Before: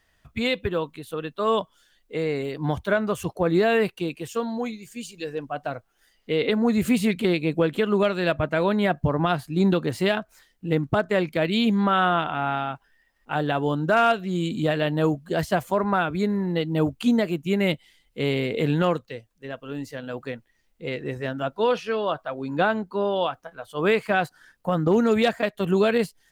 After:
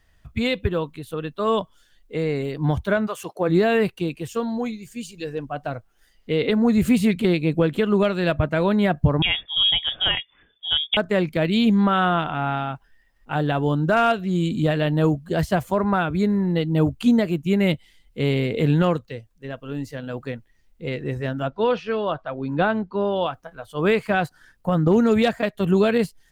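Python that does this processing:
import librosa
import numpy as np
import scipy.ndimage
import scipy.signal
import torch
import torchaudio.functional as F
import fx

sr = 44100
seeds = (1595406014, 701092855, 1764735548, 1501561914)

y = fx.highpass(x, sr, hz=fx.line((3.06, 740.0), (3.48, 230.0)), slope=12, at=(3.06, 3.48), fade=0.02)
y = fx.freq_invert(y, sr, carrier_hz=3500, at=(9.22, 10.97))
y = fx.lowpass(y, sr, hz=4400.0, slope=12, at=(21.47, 23.26))
y = fx.low_shelf(y, sr, hz=150.0, db=11.5)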